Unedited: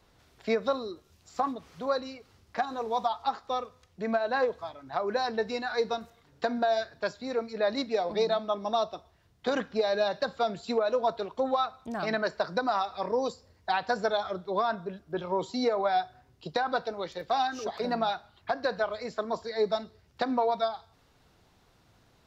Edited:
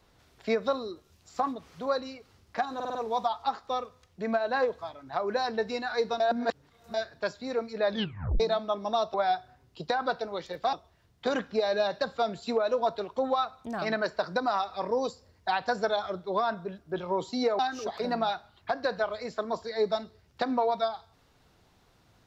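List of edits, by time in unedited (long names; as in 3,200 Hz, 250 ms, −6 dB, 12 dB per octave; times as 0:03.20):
0:02.75: stutter 0.05 s, 5 plays
0:06.00–0:06.74: reverse
0:07.69: tape stop 0.51 s
0:15.80–0:17.39: move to 0:08.94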